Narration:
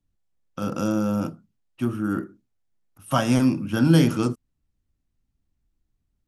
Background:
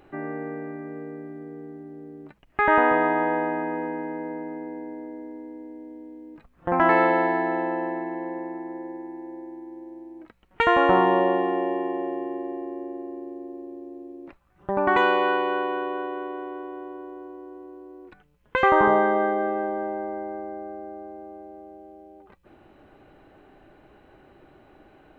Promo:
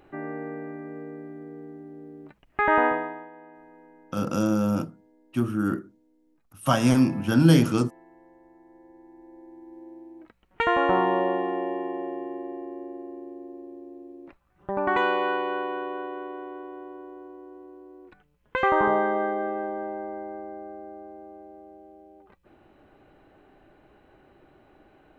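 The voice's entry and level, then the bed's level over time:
3.55 s, 0.0 dB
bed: 2.86 s -2 dB
3.31 s -23 dB
8.39 s -23 dB
9.86 s -3.5 dB

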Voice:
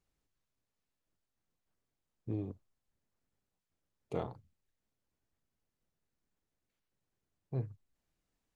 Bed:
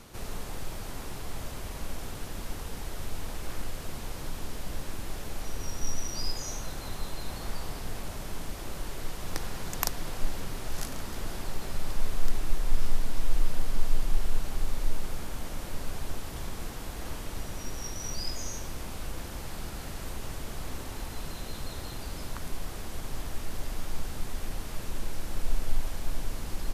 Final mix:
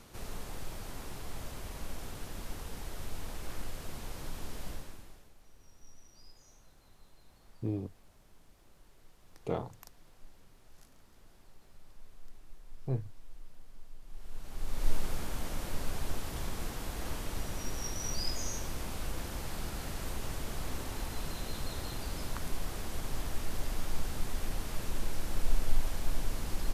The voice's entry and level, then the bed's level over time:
5.35 s, +3.0 dB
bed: 4.69 s -4.5 dB
5.35 s -24.5 dB
14 s -24.5 dB
14.89 s -0.5 dB

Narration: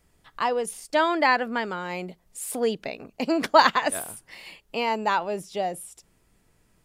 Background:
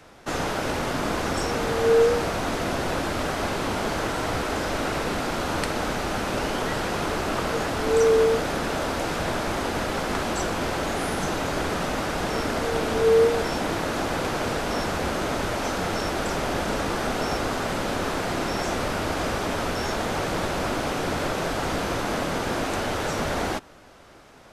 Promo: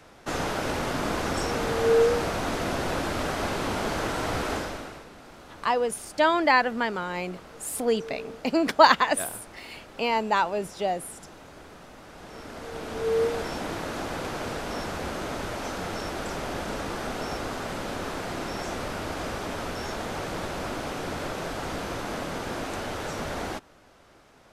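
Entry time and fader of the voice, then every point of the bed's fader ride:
5.25 s, +0.5 dB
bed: 4.54 s -2 dB
5.09 s -20.5 dB
11.99 s -20.5 dB
13.24 s -6 dB

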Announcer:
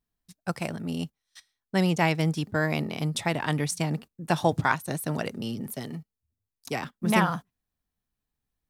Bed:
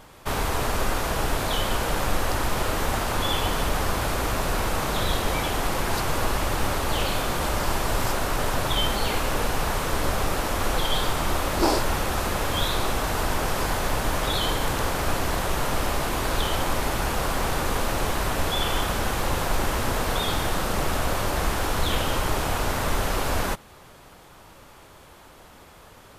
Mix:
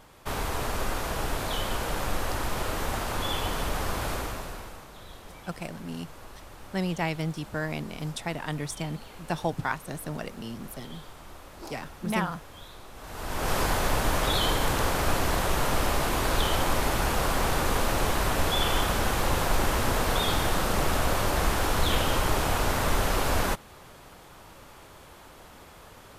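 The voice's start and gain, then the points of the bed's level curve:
5.00 s, -5.5 dB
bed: 4.14 s -5 dB
4.89 s -21.5 dB
12.91 s -21.5 dB
13.52 s -0.5 dB

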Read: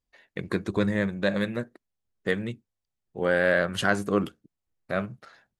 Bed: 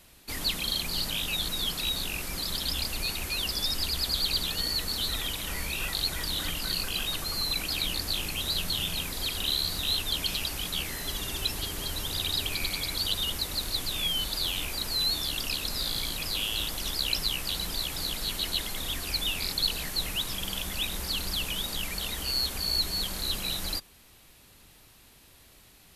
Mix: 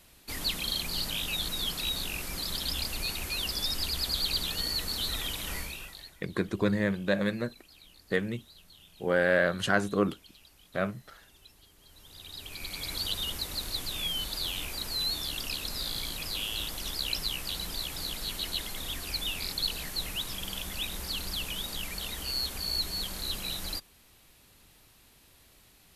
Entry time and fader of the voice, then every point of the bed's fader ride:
5.85 s, -2.0 dB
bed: 5.57 s -2 dB
6.22 s -25.5 dB
11.78 s -25.5 dB
12.91 s -3.5 dB

